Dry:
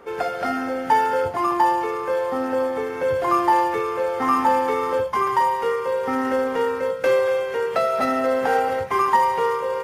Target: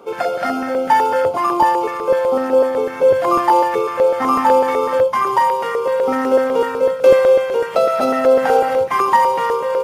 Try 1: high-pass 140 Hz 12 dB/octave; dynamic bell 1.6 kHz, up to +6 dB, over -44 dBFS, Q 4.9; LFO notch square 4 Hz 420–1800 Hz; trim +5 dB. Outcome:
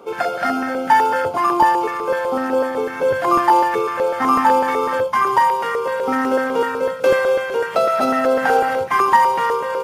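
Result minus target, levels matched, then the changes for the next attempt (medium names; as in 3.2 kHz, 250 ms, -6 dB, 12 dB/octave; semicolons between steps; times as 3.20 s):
2 kHz band +5.0 dB
change: dynamic bell 530 Hz, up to +6 dB, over -44 dBFS, Q 4.9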